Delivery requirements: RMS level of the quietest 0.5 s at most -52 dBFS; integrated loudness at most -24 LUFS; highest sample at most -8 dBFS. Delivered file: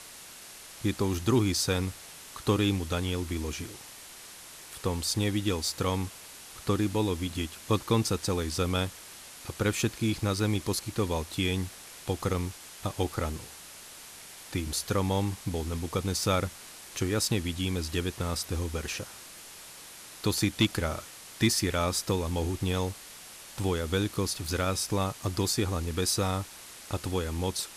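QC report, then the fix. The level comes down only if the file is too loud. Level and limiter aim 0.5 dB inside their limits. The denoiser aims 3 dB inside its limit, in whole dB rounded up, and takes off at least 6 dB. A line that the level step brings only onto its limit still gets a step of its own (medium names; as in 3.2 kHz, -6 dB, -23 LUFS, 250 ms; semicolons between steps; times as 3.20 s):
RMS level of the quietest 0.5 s -47 dBFS: fail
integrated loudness -30.0 LUFS: pass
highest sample -13.5 dBFS: pass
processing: noise reduction 8 dB, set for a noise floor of -47 dBFS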